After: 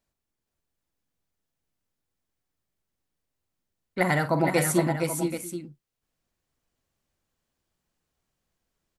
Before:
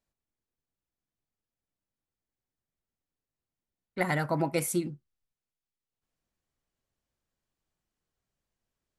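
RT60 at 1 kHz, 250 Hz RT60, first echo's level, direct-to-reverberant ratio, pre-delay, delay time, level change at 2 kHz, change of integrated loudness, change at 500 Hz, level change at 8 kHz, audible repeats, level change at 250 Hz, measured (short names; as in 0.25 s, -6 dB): none, none, -11.5 dB, none, none, 49 ms, +6.5 dB, +5.0 dB, +6.5 dB, +6.5 dB, 4, +6.5 dB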